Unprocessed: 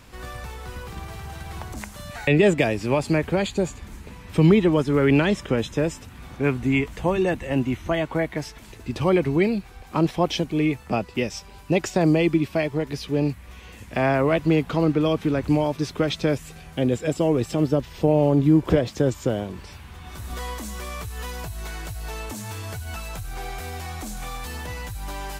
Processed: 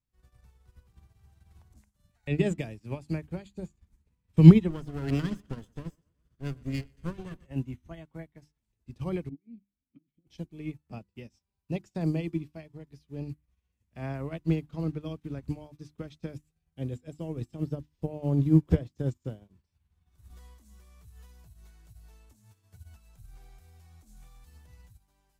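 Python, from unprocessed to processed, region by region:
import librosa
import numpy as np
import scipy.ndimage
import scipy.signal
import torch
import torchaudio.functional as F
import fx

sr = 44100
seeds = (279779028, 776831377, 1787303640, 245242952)

y = fx.chain(x, sr, fx.lower_of_two(delay_ms=0.64),
    fx.notch(hz=860.0, q=8.7),
    fx.echo_tape(ms=121, feedback_pct=67, wet_db=-12.0, lp_hz=5900.0, drive_db=11.0, wow_cents=6), at=(4.7, 7.46))
y = fx.chain(y, sr, fx.tilt_eq(slope=-3.0),
    fx.over_compress(threshold_db=-18.0, ratio=-0.5),
    fx.vowel_filter(vowel='i'), at=(9.29, 10.27))
y = fx.bass_treble(y, sr, bass_db=13, treble_db=6)
y = fx.hum_notches(y, sr, base_hz=50, count=7)
y = fx.upward_expand(y, sr, threshold_db=-33.0, expansion=2.5)
y = F.gain(torch.from_numpy(y), -2.5).numpy()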